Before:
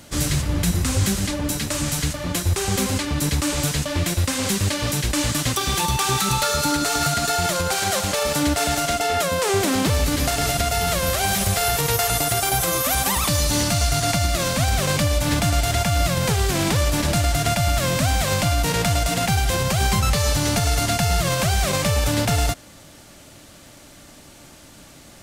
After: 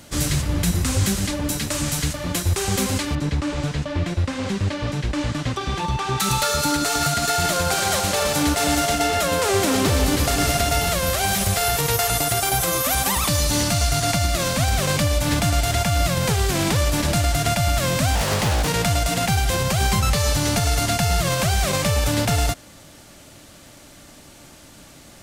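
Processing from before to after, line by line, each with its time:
3.15–6.20 s: tape spacing loss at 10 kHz 21 dB
7.10–10.89 s: two-band feedback delay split 1.5 kHz, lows 278 ms, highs 121 ms, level -7 dB
18.15–18.68 s: loudspeaker Doppler distortion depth 0.74 ms

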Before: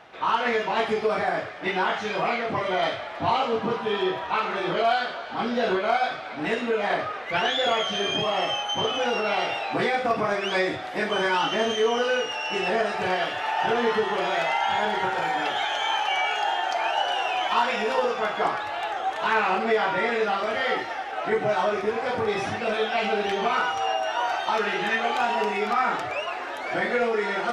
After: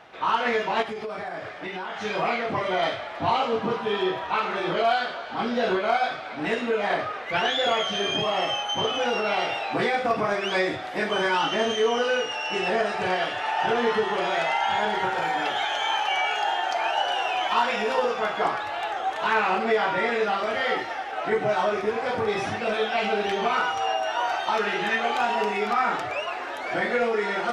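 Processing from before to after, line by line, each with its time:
0.82–2.01 s: compression 5:1, threshold -30 dBFS
11.28–14.93 s: careless resampling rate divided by 2×, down none, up filtered

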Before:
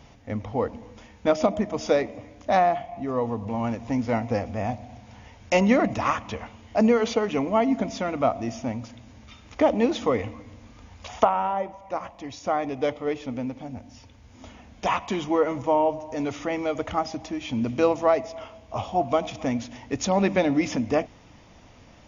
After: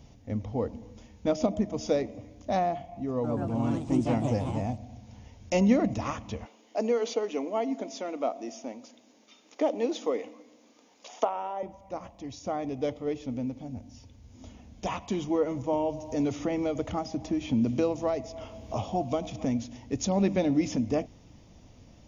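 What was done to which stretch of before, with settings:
3.11–4.93 s: ever faster or slower copies 130 ms, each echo +3 st, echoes 2
6.45–11.63 s: high-pass 310 Hz 24 dB/octave
15.73–19.45 s: three bands compressed up and down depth 70%
whole clip: peaking EQ 1.5 kHz -12.5 dB 2.6 oct

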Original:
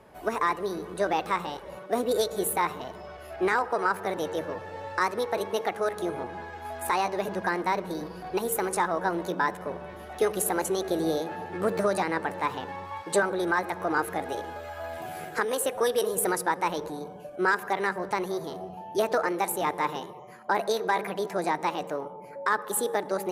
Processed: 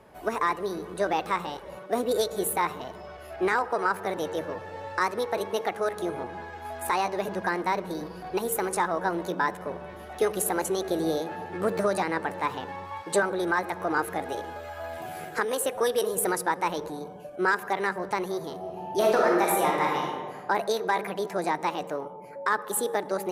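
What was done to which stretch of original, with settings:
18.59–20.37 s: reverb throw, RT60 1.4 s, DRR -2 dB

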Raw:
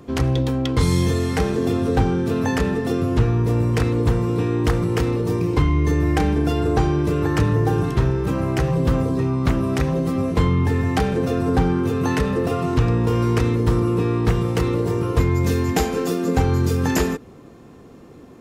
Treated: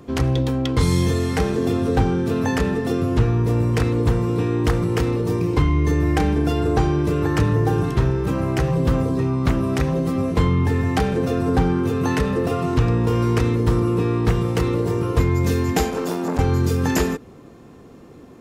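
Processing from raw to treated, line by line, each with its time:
15.90–16.39 s: transformer saturation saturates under 980 Hz

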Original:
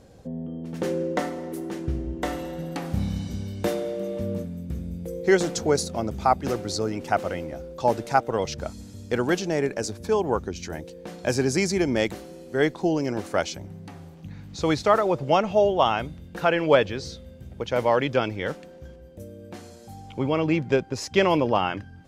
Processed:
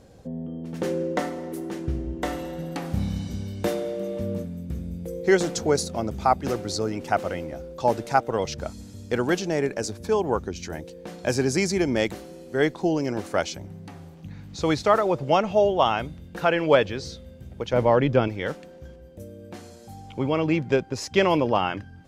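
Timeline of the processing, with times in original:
17.73–18.28 s: tilt EQ -2.5 dB/octave

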